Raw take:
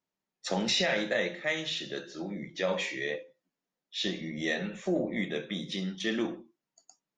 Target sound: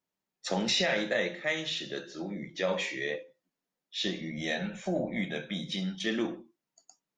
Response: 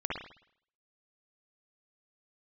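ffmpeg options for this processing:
-filter_complex "[0:a]asettb=1/sr,asplit=3[link_01][link_02][link_03];[link_01]atrim=end=4.304[link_04];[link_02]atrim=start=4.3:end=6.06,asetpts=PTS-STARTPTS,afade=type=in:duration=0.004:curve=qsin,afade=type=out:start_time=1.756:duration=0.004:curve=qsin,aecho=1:1:1.3:0.49,atrim=end_sample=77616[link_05];[link_03]atrim=start=6.056[link_06];[link_04][link_05]acrossfade=duration=0.004:curve1=hsin:curve2=qsin[link_07];[link_07][link_06]acrossfade=duration=0.004:curve1=qsin:curve2=hsin"

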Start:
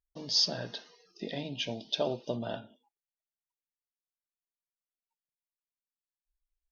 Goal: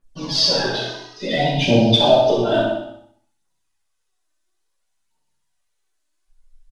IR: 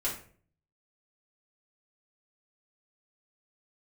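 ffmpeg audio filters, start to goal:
-filter_complex "[0:a]acrossover=split=3600[link_01][link_02];[link_02]acompressor=threshold=-45dB:ratio=4:attack=1:release=60[link_03];[link_01][link_03]amix=inputs=2:normalize=0,aphaser=in_gain=1:out_gain=1:delay=3.4:decay=0.78:speed=0.58:type=triangular,aecho=1:1:64|128|192|256|320:0.447|0.201|0.0905|0.0407|0.0183[link_04];[1:a]atrim=start_sample=2205,afade=type=out:start_time=0.28:duration=0.01,atrim=end_sample=12789,asetrate=22932,aresample=44100[link_05];[link_04][link_05]afir=irnorm=-1:irlink=0,volume=5dB"

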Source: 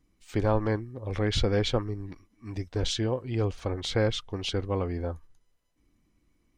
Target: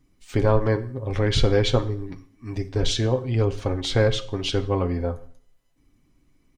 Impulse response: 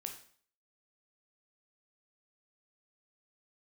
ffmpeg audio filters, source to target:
-filter_complex "[0:a]aecho=1:1:7.4:0.43,asplit=2[link_01][link_02];[1:a]atrim=start_sample=2205,lowshelf=frequency=360:gain=5.5[link_03];[link_02][link_03]afir=irnorm=-1:irlink=0,volume=-1dB[link_04];[link_01][link_04]amix=inputs=2:normalize=0"

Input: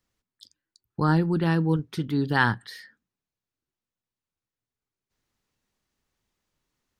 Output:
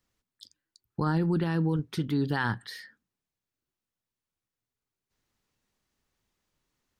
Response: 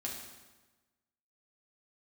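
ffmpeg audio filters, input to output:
-af "alimiter=limit=-19dB:level=0:latency=1:release=46"

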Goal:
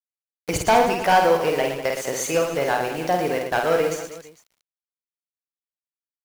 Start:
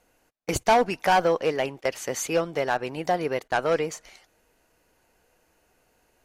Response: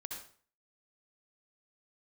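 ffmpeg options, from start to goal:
-filter_complex "[0:a]acrusher=bits=6:mix=0:aa=0.000001,asplit=2[link_01][link_02];[link_02]aecho=0:1:50|115|199.5|309.4|452.2:0.631|0.398|0.251|0.158|0.1[link_03];[link_01][link_03]amix=inputs=2:normalize=0,volume=1.5dB"

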